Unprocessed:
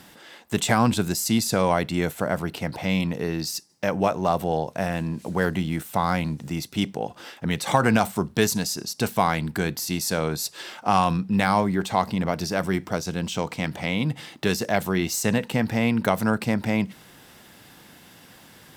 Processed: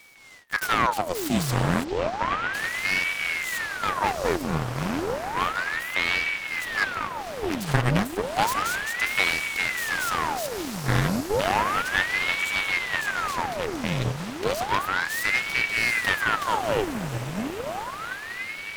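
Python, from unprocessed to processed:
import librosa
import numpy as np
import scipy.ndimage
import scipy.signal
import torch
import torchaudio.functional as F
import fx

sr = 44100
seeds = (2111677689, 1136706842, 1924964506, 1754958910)

y = fx.echo_diffused(x, sr, ms=766, feedback_pct=67, wet_db=-6)
y = np.abs(y)
y = fx.air_absorb(y, sr, metres=180.0, at=(1.83, 2.53), fade=0.02)
y = fx.ring_lfo(y, sr, carrier_hz=1200.0, swing_pct=90, hz=0.32)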